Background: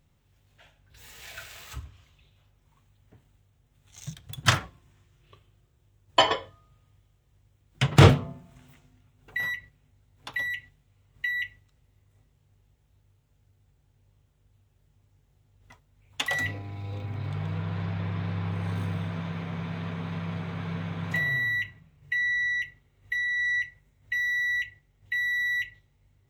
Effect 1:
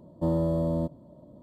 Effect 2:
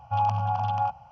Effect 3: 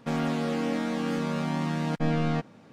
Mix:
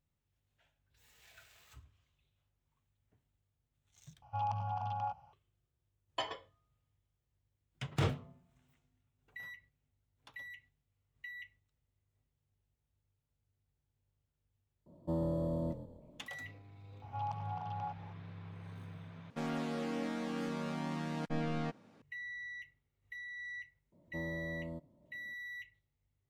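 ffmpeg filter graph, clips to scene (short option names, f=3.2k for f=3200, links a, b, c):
-filter_complex "[2:a]asplit=2[a][b];[1:a]asplit=2[c][d];[0:a]volume=-18dB[e];[c]asplit=5[f][g][h][i][j];[g]adelay=122,afreqshift=-37,volume=-11.5dB[k];[h]adelay=244,afreqshift=-74,volume=-19.7dB[l];[i]adelay=366,afreqshift=-111,volume=-27.9dB[m];[j]adelay=488,afreqshift=-148,volume=-36dB[n];[f][k][l][m][n]amix=inputs=5:normalize=0[o];[b]acompressor=mode=upward:threshold=-29dB:ratio=2.5:attack=3.2:release=140:knee=2.83:detection=peak[p];[3:a]equalizer=f=140:t=o:w=0.77:g=-3[q];[e]asplit=3[r][s][t];[r]atrim=end=4.224[u];[a]atrim=end=1.11,asetpts=PTS-STARTPTS,volume=-11.5dB[v];[s]atrim=start=5.326:end=19.304[w];[q]atrim=end=2.72,asetpts=PTS-STARTPTS,volume=-9dB[x];[t]atrim=start=22.016[y];[o]atrim=end=1.42,asetpts=PTS-STARTPTS,volume=-9dB,afade=t=in:d=0.004:c=hsin,afade=t=out:st=1.416:d=0.004:c=hsin,adelay=14860[z];[p]atrim=end=1.11,asetpts=PTS-STARTPTS,volume=-15dB,afade=t=in:d=0.004:c=hsin,afade=t=out:st=1.106:d=0.004:c=hsin,adelay=17020[aa];[d]atrim=end=1.42,asetpts=PTS-STARTPTS,volume=-16dB,afade=t=in:d=0.004:c=hsin,afade=t=out:st=1.416:d=0.004:c=hsin,adelay=23920[ab];[u][v]acrossfade=d=0.004:c1=hsin:c2=hsin[ac];[ac][w]acrossfade=d=0.004:c1=hsin:c2=hsin[ad];[ad][x]acrossfade=d=0.004:c1=hsin:c2=hsin[ae];[ae][y]acrossfade=d=0.004:c1=hsin:c2=hsin[af];[af][z][aa][ab]amix=inputs=4:normalize=0"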